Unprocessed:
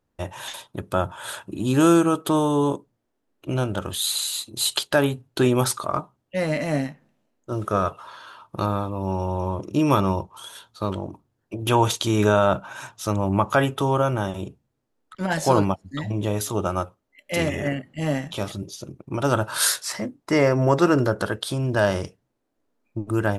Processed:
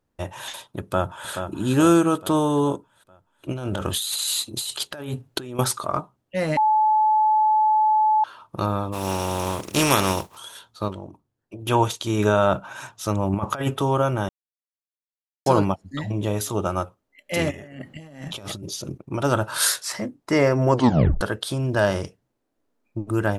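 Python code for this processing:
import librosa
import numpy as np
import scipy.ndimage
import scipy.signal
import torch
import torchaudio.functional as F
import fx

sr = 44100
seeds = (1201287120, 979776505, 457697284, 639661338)

y = fx.echo_throw(x, sr, start_s=0.81, length_s=0.5, ms=430, feedback_pct=50, wet_db=-7.5)
y = fx.over_compress(y, sr, threshold_db=-29.0, ratio=-1.0, at=(3.52, 5.59))
y = fx.spec_flatten(y, sr, power=0.48, at=(8.92, 10.36), fade=0.02)
y = fx.upward_expand(y, sr, threshold_db=-28.0, expansion=1.5, at=(10.88, 12.39))
y = fx.over_compress(y, sr, threshold_db=-23.0, ratio=-0.5, at=(13.33, 13.78))
y = fx.over_compress(y, sr, threshold_db=-37.0, ratio=-1.0, at=(17.51, 18.98))
y = fx.edit(y, sr, fx.bleep(start_s=6.57, length_s=1.67, hz=862.0, db=-15.0),
    fx.silence(start_s=14.29, length_s=1.17),
    fx.tape_stop(start_s=20.71, length_s=0.5), tone=tone)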